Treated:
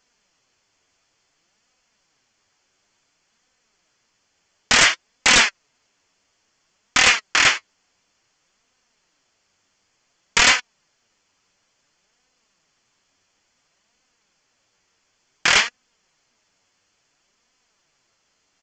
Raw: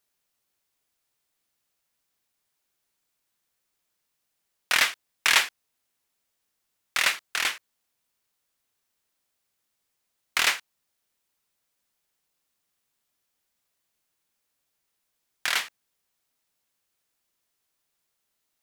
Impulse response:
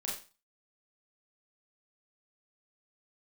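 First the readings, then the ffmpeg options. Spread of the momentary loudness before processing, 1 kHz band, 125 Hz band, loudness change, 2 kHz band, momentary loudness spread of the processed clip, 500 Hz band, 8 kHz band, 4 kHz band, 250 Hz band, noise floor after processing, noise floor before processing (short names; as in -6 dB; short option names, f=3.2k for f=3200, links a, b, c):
12 LU, +9.5 dB, n/a, +8.5 dB, +8.5 dB, 8 LU, +12.5 dB, +10.5 dB, +8.5 dB, +17.5 dB, -69 dBFS, -79 dBFS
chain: -af "bandreject=f=3.8k:w=6.5,aresample=16000,aeval=exprs='0.562*sin(PI/2*5.62*val(0)/0.562)':c=same,aresample=44100,flanger=delay=3.9:depth=7:regen=44:speed=0.57:shape=sinusoidal"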